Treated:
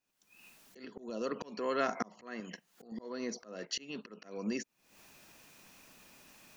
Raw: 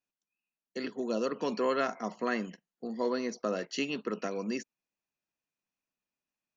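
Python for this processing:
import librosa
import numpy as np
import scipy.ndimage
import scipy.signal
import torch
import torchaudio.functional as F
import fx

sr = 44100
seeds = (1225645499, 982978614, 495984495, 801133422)

y = fx.recorder_agc(x, sr, target_db=-22.5, rise_db_per_s=68.0, max_gain_db=30)
y = fx.low_shelf(y, sr, hz=460.0, db=-7.5, at=(2.4, 2.92))
y = fx.auto_swell(y, sr, attack_ms=711.0)
y = y * librosa.db_to_amplitude(3.5)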